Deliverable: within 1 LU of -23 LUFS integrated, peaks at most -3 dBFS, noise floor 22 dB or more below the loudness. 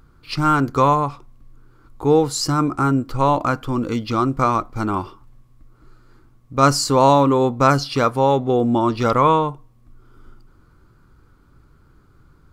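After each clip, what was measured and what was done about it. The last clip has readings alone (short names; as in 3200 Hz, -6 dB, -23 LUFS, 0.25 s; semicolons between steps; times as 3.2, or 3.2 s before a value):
loudness -18.5 LUFS; peak -2.0 dBFS; loudness target -23.0 LUFS
-> gain -4.5 dB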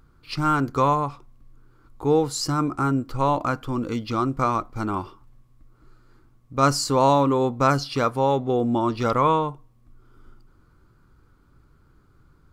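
loudness -23.0 LUFS; peak -6.5 dBFS; noise floor -58 dBFS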